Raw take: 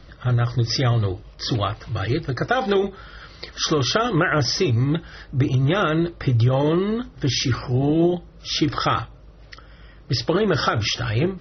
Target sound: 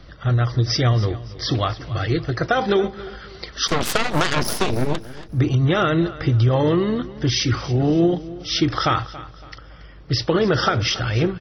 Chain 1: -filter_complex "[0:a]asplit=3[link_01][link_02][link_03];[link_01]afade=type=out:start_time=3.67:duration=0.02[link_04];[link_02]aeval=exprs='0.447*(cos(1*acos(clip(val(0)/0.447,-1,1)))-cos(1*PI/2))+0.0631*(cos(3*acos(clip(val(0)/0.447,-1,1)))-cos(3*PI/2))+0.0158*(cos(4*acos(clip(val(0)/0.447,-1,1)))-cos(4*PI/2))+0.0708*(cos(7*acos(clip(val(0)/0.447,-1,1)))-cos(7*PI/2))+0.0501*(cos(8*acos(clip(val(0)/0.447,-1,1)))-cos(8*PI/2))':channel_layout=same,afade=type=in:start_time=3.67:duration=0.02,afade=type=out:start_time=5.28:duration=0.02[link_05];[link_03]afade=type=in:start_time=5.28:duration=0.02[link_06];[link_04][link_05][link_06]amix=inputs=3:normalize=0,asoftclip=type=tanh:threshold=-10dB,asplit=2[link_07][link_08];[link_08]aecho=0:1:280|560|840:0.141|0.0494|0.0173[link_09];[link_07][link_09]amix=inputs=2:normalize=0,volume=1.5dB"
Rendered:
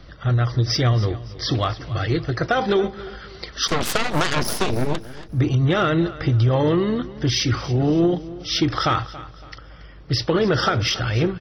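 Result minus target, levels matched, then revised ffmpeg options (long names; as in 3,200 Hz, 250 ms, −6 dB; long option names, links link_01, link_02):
soft clipping: distortion +11 dB
-filter_complex "[0:a]asplit=3[link_01][link_02][link_03];[link_01]afade=type=out:start_time=3.67:duration=0.02[link_04];[link_02]aeval=exprs='0.447*(cos(1*acos(clip(val(0)/0.447,-1,1)))-cos(1*PI/2))+0.0631*(cos(3*acos(clip(val(0)/0.447,-1,1)))-cos(3*PI/2))+0.0158*(cos(4*acos(clip(val(0)/0.447,-1,1)))-cos(4*PI/2))+0.0708*(cos(7*acos(clip(val(0)/0.447,-1,1)))-cos(7*PI/2))+0.0501*(cos(8*acos(clip(val(0)/0.447,-1,1)))-cos(8*PI/2))':channel_layout=same,afade=type=in:start_time=3.67:duration=0.02,afade=type=out:start_time=5.28:duration=0.02[link_05];[link_03]afade=type=in:start_time=5.28:duration=0.02[link_06];[link_04][link_05][link_06]amix=inputs=3:normalize=0,asoftclip=type=tanh:threshold=-3.5dB,asplit=2[link_07][link_08];[link_08]aecho=0:1:280|560|840:0.141|0.0494|0.0173[link_09];[link_07][link_09]amix=inputs=2:normalize=0,volume=1.5dB"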